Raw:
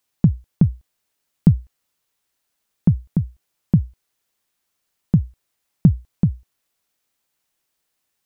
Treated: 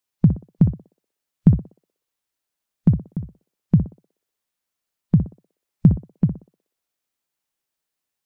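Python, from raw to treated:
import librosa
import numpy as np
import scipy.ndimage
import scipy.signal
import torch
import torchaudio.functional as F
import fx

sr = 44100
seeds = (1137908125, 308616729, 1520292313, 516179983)

y = fx.noise_reduce_blind(x, sr, reduce_db=8)
y = fx.echo_banded(y, sr, ms=61, feedback_pct=48, hz=520.0, wet_db=-5.0)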